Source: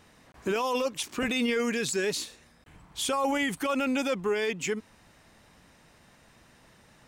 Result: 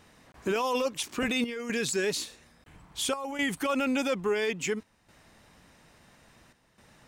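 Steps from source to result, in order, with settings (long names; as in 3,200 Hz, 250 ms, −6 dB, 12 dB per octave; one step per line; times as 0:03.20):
square-wave tremolo 0.59 Hz, depth 65%, duty 85%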